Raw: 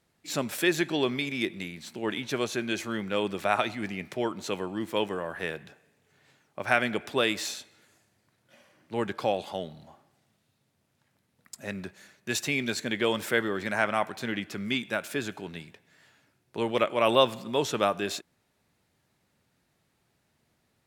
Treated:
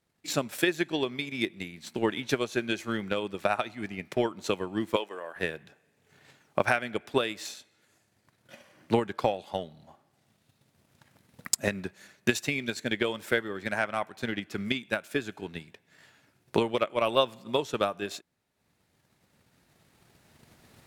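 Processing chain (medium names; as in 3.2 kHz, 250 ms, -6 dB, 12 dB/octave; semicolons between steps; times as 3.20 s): recorder AGC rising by 7.2 dB/s; transient shaper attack +9 dB, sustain -4 dB; 4.96–5.36 s: high-pass 420 Hz 12 dB/octave; trim -6.5 dB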